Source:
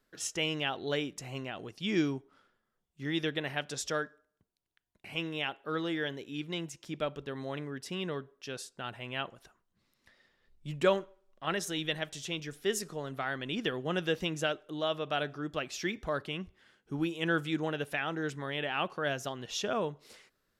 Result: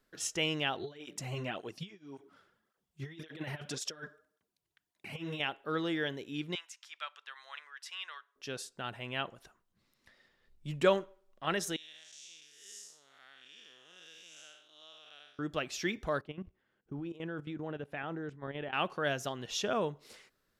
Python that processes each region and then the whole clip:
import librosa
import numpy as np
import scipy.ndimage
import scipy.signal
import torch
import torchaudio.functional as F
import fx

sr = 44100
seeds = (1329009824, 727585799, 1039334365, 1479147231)

y = fx.chain(x, sr, fx.over_compress(threshold_db=-38.0, ratio=-0.5),
    fx.flanger_cancel(hz=1.8, depth_ms=4.4), at=(0.79, 5.4))
y = fx.chain(y, sr, fx.highpass(hz=1100.0, slope=24),
    fx.high_shelf(hz=9900.0, db=-11.0), at=(6.55, 8.36))
y = fx.chain(y, sr, fx.spec_blur(span_ms=217.0),
    fx.bandpass_q(hz=6300.0, q=1.7), at=(11.76, 15.39))
y = fx.chain(y, sr, fx.lowpass(hz=1000.0, slope=6),
    fx.level_steps(step_db=13), at=(16.21, 18.73))